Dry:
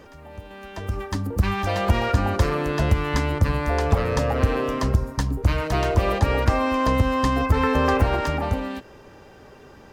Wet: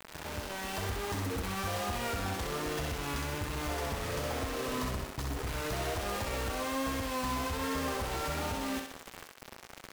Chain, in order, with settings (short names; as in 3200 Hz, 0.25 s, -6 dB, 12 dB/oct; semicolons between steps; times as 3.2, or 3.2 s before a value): compressor 10:1, threshold -31 dBFS, peak gain reduction 18.5 dB; companded quantiser 2-bit; vibrato 1.2 Hz 51 cents; thinning echo 64 ms, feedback 51%, high-pass 310 Hz, level -4 dB; gain -8 dB